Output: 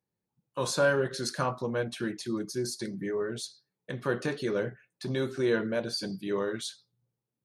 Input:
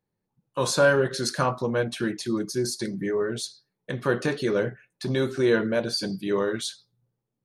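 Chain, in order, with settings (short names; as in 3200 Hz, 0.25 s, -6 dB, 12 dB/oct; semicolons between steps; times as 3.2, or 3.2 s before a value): HPF 44 Hz; gain -5.5 dB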